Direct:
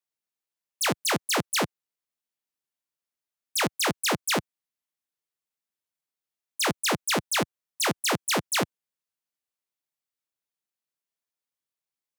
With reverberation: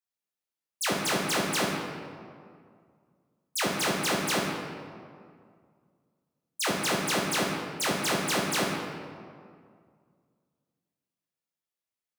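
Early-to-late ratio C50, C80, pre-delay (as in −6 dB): 1.5 dB, 3.0 dB, 6 ms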